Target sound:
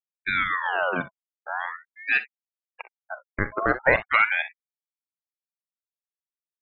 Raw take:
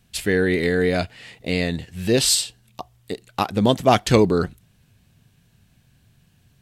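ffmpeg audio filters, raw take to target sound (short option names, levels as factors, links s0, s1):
-filter_complex "[0:a]highpass=280,lowpass=2700,acrossover=split=500|1600[s0][s1][s2];[s1]acrusher=bits=5:dc=4:mix=0:aa=0.000001[s3];[s2]acompressor=threshold=0.00794:ratio=6[s4];[s0][s3][s4]amix=inputs=3:normalize=0,afftfilt=real='re*gte(hypot(re,im),0.0794)':imag='im*gte(hypot(re,im),0.0794)':win_size=1024:overlap=0.75,asplit=2[s5][s6];[s6]aecho=0:1:44|61:0.188|0.15[s7];[s5][s7]amix=inputs=2:normalize=0,aeval=exprs='val(0)*sin(2*PI*1500*n/s+1500*0.45/0.43*sin(2*PI*0.43*n/s))':c=same"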